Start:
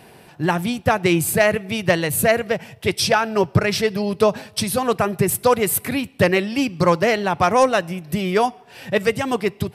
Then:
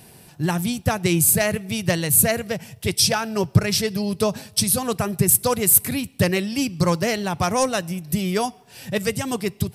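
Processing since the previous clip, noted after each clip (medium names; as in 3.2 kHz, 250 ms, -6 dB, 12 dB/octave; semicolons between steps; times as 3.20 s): tone controls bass +9 dB, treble +14 dB; trim -6.5 dB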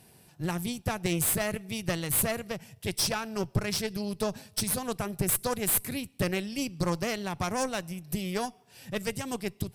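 valve stage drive 14 dB, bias 0.75; trim -5.5 dB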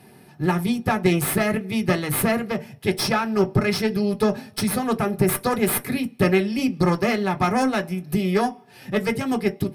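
reverberation RT60 0.25 s, pre-delay 3 ms, DRR 4.5 dB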